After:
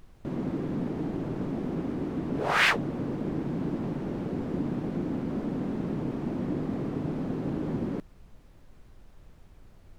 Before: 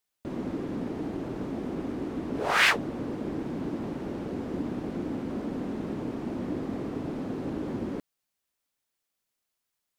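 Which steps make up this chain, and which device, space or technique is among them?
car interior (bell 150 Hz +7.5 dB 0.71 oct; high shelf 4200 Hz -5.5 dB; brown noise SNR 19 dB)

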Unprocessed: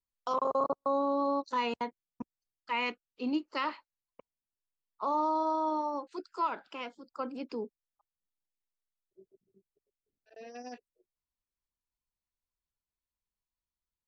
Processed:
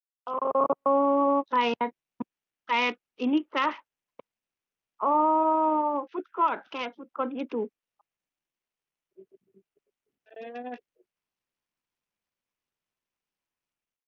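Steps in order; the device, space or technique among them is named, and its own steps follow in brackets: Bluetooth headset (HPF 150 Hz 12 dB/oct; AGC gain up to 10 dB; downsampling 8000 Hz; gain -3 dB; SBC 64 kbps 48000 Hz)

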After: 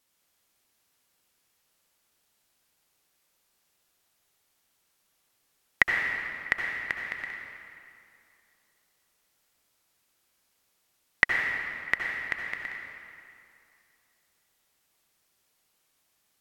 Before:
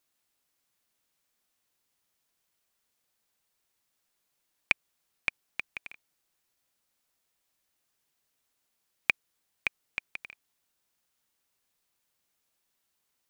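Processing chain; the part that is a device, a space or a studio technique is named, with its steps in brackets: slowed and reverbed (varispeed -19%; reverb RT60 2.6 s, pre-delay 62 ms, DRR 0 dB); gain +3.5 dB

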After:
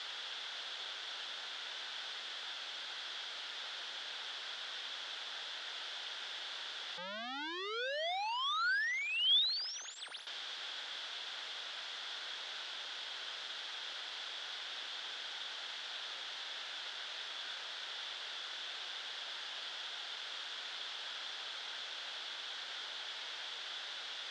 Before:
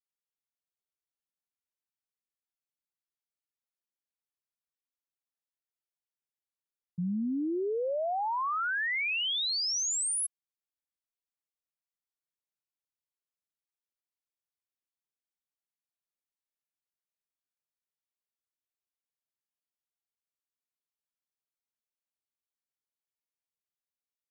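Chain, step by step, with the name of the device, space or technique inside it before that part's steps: home computer beeper (infinite clipping; speaker cabinet 660–4500 Hz, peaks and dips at 1100 Hz -4 dB, 1500 Hz +5 dB, 2400 Hz -4 dB, 3400 Hz +10 dB); gain +4 dB

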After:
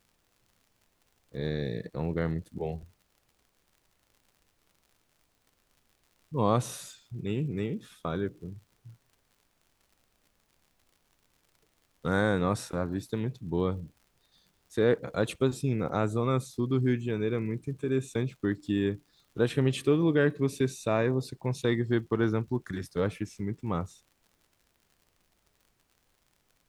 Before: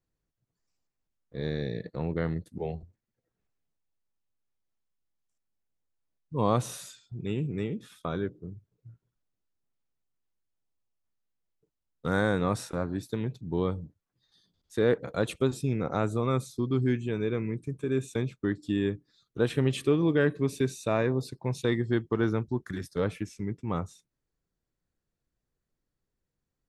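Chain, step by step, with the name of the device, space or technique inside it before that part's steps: vinyl LP (crackle 77/s -50 dBFS; pink noise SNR 41 dB)

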